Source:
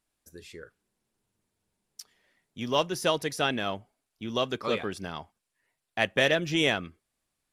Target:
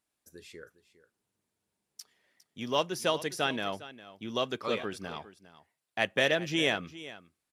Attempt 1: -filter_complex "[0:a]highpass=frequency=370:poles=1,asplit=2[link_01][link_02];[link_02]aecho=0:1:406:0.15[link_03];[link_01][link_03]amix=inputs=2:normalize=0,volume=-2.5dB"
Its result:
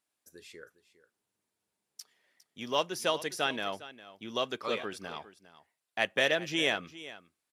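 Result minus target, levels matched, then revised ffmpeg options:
125 Hz band −5.5 dB
-filter_complex "[0:a]highpass=frequency=130:poles=1,asplit=2[link_01][link_02];[link_02]aecho=0:1:406:0.15[link_03];[link_01][link_03]amix=inputs=2:normalize=0,volume=-2.5dB"

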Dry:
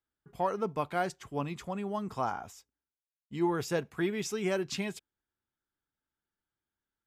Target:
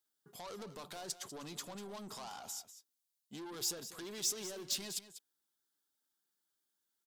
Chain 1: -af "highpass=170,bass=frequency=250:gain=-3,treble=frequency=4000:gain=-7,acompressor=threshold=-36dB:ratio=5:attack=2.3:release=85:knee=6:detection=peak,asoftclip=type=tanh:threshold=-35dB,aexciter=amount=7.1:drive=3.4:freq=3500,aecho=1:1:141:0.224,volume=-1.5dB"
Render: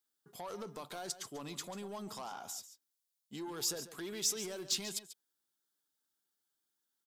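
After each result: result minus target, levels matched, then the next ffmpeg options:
echo 54 ms early; soft clipping: distortion −7 dB
-af "highpass=170,bass=frequency=250:gain=-3,treble=frequency=4000:gain=-7,acompressor=threshold=-36dB:ratio=5:attack=2.3:release=85:knee=6:detection=peak,asoftclip=type=tanh:threshold=-35dB,aexciter=amount=7.1:drive=3.4:freq=3500,aecho=1:1:195:0.224,volume=-1.5dB"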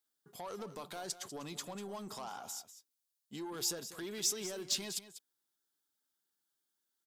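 soft clipping: distortion −7 dB
-af "highpass=170,bass=frequency=250:gain=-3,treble=frequency=4000:gain=-7,acompressor=threshold=-36dB:ratio=5:attack=2.3:release=85:knee=6:detection=peak,asoftclip=type=tanh:threshold=-42dB,aexciter=amount=7.1:drive=3.4:freq=3500,aecho=1:1:195:0.224,volume=-1.5dB"

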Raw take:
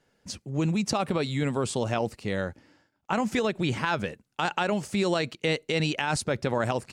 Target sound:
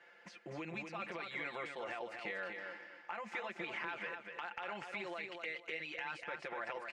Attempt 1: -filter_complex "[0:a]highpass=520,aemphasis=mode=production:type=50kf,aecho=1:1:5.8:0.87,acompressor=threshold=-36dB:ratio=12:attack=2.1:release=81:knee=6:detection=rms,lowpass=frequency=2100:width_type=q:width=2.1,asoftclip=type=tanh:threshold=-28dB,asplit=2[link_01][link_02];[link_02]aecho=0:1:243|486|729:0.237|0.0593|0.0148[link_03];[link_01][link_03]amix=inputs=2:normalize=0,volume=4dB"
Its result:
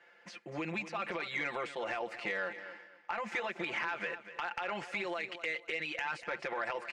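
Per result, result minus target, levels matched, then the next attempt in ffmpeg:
downward compressor: peak gain reduction −7.5 dB; echo-to-direct −7 dB
-filter_complex "[0:a]highpass=520,aemphasis=mode=production:type=50kf,aecho=1:1:5.8:0.87,acompressor=threshold=-44dB:ratio=12:attack=2.1:release=81:knee=6:detection=rms,lowpass=frequency=2100:width_type=q:width=2.1,asoftclip=type=tanh:threshold=-28dB,asplit=2[link_01][link_02];[link_02]aecho=0:1:243|486|729:0.237|0.0593|0.0148[link_03];[link_01][link_03]amix=inputs=2:normalize=0,volume=4dB"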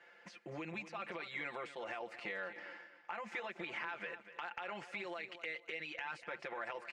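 echo-to-direct −7 dB
-filter_complex "[0:a]highpass=520,aemphasis=mode=production:type=50kf,aecho=1:1:5.8:0.87,acompressor=threshold=-44dB:ratio=12:attack=2.1:release=81:knee=6:detection=rms,lowpass=frequency=2100:width_type=q:width=2.1,asoftclip=type=tanh:threshold=-28dB,asplit=2[link_01][link_02];[link_02]aecho=0:1:243|486|729:0.531|0.133|0.0332[link_03];[link_01][link_03]amix=inputs=2:normalize=0,volume=4dB"

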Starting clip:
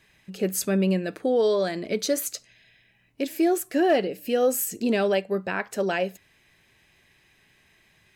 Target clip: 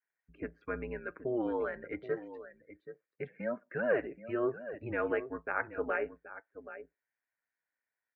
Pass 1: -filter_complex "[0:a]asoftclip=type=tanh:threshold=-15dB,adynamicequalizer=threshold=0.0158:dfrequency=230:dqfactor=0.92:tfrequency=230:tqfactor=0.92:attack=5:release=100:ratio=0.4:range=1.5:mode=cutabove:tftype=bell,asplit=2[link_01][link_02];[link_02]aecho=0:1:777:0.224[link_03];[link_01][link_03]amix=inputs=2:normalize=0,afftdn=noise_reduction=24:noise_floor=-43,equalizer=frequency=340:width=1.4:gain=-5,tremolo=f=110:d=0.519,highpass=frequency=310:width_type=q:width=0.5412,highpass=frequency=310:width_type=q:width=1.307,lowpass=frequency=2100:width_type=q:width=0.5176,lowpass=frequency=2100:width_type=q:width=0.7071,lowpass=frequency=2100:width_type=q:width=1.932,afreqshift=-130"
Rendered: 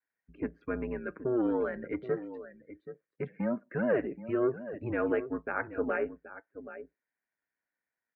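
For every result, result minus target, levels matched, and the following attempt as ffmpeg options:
soft clipping: distortion +19 dB; 250 Hz band +3.5 dB
-filter_complex "[0:a]asoftclip=type=tanh:threshold=-4.5dB,adynamicequalizer=threshold=0.0158:dfrequency=230:dqfactor=0.92:tfrequency=230:tqfactor=0.92:attack=5:release=100:ratio=0.4:range=1.5:mode=cutabove:tftype=bell,asplit=2[link_01][link_02];[link_02]aecho=0:1:777:0.224[link_03];[link_01][link_03]amix=inputs=2:normalize=0,afftdn=noise_reduction=24:noise_floor=-43,equalizer=frequency=340:width=1.4:gain=-5,tremolo=f=110:d=0.519,highpass=frequency=310:width_type=q:width=0.5412,highpass=frequency=310:width_type=q:width=1.307,lowpass=frequency=2100:width_type=q:width=0.5176,lowpass=frequency=2100:width_type=q:width=0.7071,lowpass=frequency=2100:width_type=q:width=1.932,afreqshift=-130"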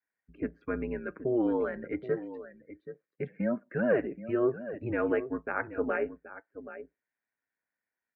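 250 Hz band +3.5 dB
-filter_complex "[0:a]asoftclip=type=tanh:threshold=-4.5dB,adynamicequalizer=threshold=0.0158:dfrequency=230:dqfactor=0.92:tfrequency=230:tqfactor=0.92:attack=5:release=100:ratio=0.4:range=1.5:mode=cutabove:tftype=bell,asplit=2[link_01][link_02];[link_02]aecho=0:1:777:0.224[link_03];[link_01][link_03]amix=inputs=2:normalize=0,afftdn=noise_reduction=24:noise_floor=-43,equalizer=frequency=340:width=1.4:gain=-16.5,tremolo=f=110:d=0.519,highpass=frequency=310:width_type=q:width=0.5412,highpass=frequency=310:width_type=q:width=1.307,lowpass=frequency=2100:width_type=q:width=0.5176,lowpass=frequency=2100:width_type=q:width=0.7071,lowpass=frequency=2100:width_type=q:width=1.932,afreqshift=-130"

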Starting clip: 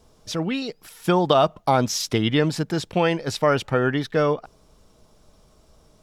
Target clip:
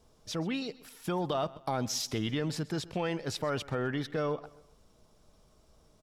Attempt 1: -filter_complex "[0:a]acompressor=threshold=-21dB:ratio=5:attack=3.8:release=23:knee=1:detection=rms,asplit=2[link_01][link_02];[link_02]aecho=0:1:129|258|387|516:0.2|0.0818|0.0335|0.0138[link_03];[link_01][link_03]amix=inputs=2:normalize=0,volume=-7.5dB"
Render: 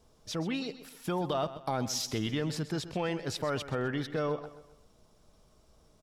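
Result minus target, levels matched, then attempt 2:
echo-to-direct +6 dB
-filter_complex "[0:a]acompressor=threshold=-21dB:ratio=5:attack=3.8:release=23:knee=1:detection=rms,asplit=2[link_01][link_02];[link_02]aecho=0:1:129|258|387:0.1|0.041|0.0168[link_03];[link_01][link_03]amix=inputs=2:normalize=0,volume=-7.5dB"

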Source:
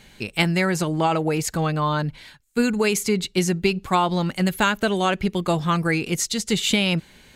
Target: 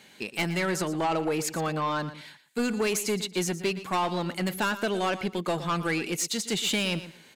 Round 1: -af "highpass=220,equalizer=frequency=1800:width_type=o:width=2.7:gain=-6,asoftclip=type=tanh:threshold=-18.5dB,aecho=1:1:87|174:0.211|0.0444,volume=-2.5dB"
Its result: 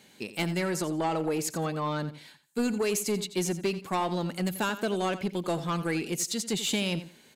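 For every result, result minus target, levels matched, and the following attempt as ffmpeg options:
echo 30 ms early; 2,000 Hz band −3.0 dB
-af "highpass=220,equalizer=frequency=1800:width_type=o:width=2.7:gain=-6,asoftclip=type=tanh:threshold=-18.5dB,aecho=1:1:117|234:0.211|0.0444,volume=-2.5dB"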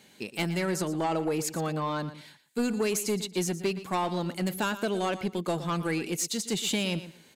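2,000 Hz band −3.0 dB
-af "highpass=220,asoftclip=type=tanh:threshold=-18.5dB,aecho=1:1:117|234:0.211|0.0444,volume=-2.5dB"

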